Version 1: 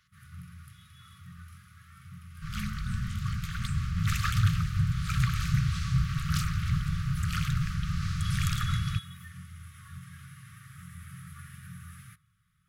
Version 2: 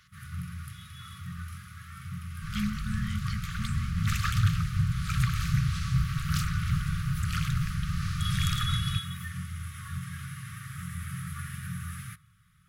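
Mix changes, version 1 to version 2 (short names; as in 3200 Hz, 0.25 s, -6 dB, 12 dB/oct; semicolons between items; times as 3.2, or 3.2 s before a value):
speech +8.5 dB; first sound +8.5 dB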